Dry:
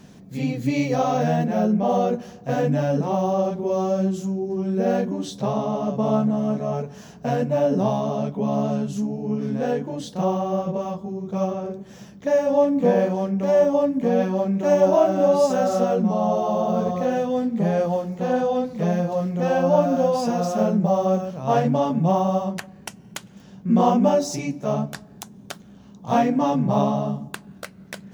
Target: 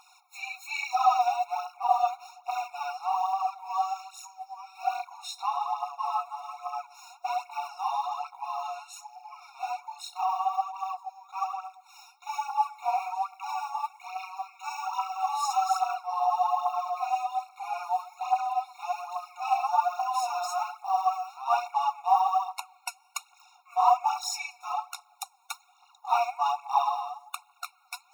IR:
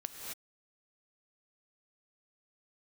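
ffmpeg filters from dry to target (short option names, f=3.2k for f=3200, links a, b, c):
-filter_complex "[0:a]asettb=1/sr,asplit=3[a][b][c];[a]atrim=end=14.024[d];[b]atrim=start=14.02:end=15.16,asetpts=PTS-STARTPTS,afade=t=in:d=0.004:c=qsin,afade=t=out:st=1.136:d=0.004:c=qsin,highpass=1.1k[e];[c]atrim=start=15.156[f];[d][e]acrossfade=d=0.004:c1=hsin:c2=qsin[g];[g][f]acrossfade=d=0.004:c1=qsin:c2=hsin,aphaser=in_gain=1:out_gain=1:delay=4.5:decay=0.63:speed=1.2:type=triangular,afftfilt=real='re*eq(mod(floor(b*sr/1024/720),2),1)':imag='im*eq(mod(floor(b*sr/1024/720),2),1)':win_size=1024:overlap=0.75"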